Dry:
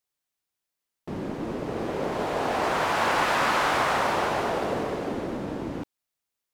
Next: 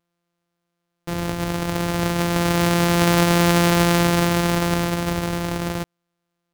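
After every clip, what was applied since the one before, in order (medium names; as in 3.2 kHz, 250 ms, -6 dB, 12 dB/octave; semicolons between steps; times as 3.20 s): sorted samples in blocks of 256 samples; trim +7 dB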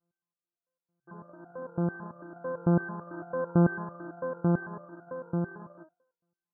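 thinning echo 105 ms, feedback 44%, high-pass 380 Hz, level -23 dB; FFT band-pass 130–1700 Hz; resonator arpeggio 9 Hz 170–720 Hz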